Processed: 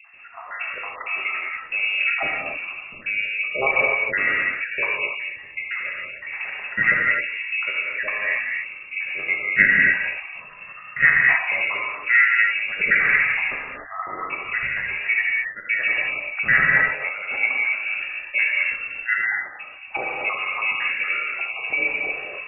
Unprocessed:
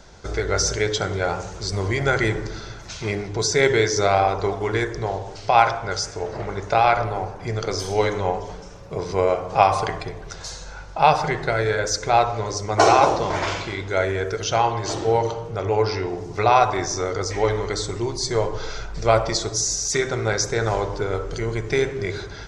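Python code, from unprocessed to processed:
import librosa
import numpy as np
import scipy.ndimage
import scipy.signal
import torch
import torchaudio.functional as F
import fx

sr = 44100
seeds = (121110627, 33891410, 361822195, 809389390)

y = fx.spec_dropout(x, sr, seeds[0], share_pct=66)
y = fx.freq_invert(y, sr, carrier_hz=2700)
y = fx.rev_gated(y, sr, seeds[1], gate_ms=320, shape='flat', drr_db=-3.5)
y = y * 10.0 ** (-2.0 / 20.0)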